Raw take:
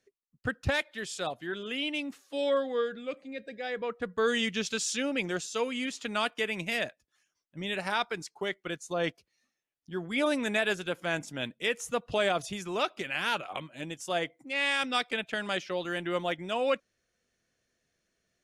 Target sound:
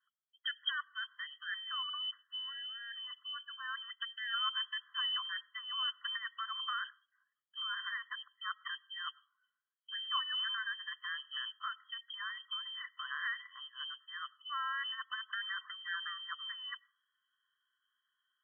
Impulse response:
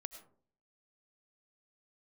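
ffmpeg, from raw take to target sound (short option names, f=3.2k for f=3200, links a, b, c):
-filter_complex "[0:a]lowpass=f=2.8k:t=q:w=0.5098,lowpass=f=2.8k:t=q:w=0.6013,lowpass=f=2.8k:t=q:w=0.9,lowpass=f=2.8k:t=q:w=2.563,afreqshift=-3300,adynamicequalizer=threshold=0.00891:dfrequency=2500:dqfactor=4.6:tfrequency=2500:tqfactor=4.6:attack=5:release=100:ratio=0.375:range=2.5:mode=boostabove:tftype=bell,alimiter=limit=-22.5dB:level=0:latency=1:release=233,bandreject=f=2.4k:w=7.6,asplit=2[a][b];[1:a]atrim=start_sample=2205,lowpass=4.6k[c];[b][c]afir=irnorm=-1:irlink=0,volume=-11dB[d];[a][d]amix=inputs=2:normalize=0,aeval=exprs='val(0)+0.00126*(sin(2*PI*50*n/s)+sin(2*PI*2*50*n/s)/2+sin(2*PI*3*50*n/s)/3+sin(2*PI*4*50*n/s)/4+sin(2*PI*5*50*n/s)/5)':c=same,afftfilt=real='re*eq(mod(floor(b*sr/1024/1000),2),1)':imag='im*eq(mod(floor(b*sr/1024/1000),2),1)':win_size=1024:overlap=0.75,volume=-2dB"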